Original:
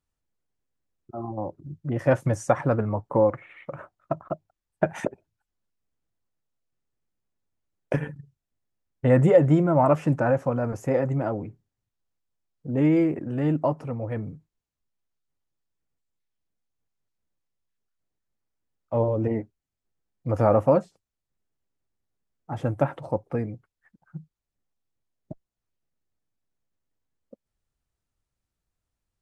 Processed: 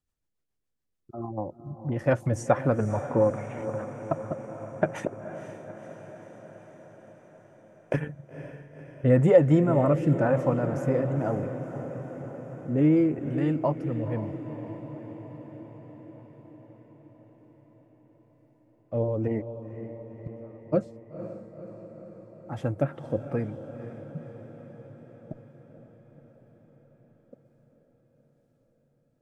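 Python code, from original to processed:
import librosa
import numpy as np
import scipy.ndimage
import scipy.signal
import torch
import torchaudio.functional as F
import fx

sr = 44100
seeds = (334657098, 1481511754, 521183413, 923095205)

y = fx.gate_flip(x, sr, shuts_db=-23.0, range_db=-37, at=(19.41, 20.72), fade=0.02)
y = fx.rotary_switch(y, sr, hz=7.0, then_hz=1.0, switch_at_s=7.38)
y = fx.echo_diffused(y, sr, ms=500, feedback_pct=68, wet_db=-11.0)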